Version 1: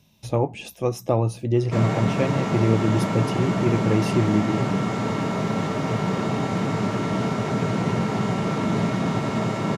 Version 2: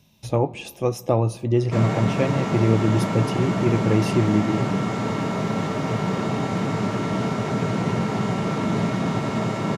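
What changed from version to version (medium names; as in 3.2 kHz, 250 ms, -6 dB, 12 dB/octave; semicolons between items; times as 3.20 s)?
reverb: on, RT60 1.9 s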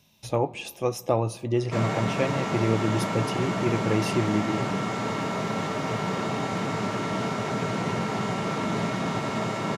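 master: add bass shelf 400 Hz -7.5 dB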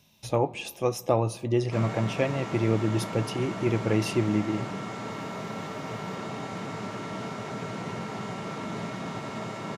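background -7.0 dB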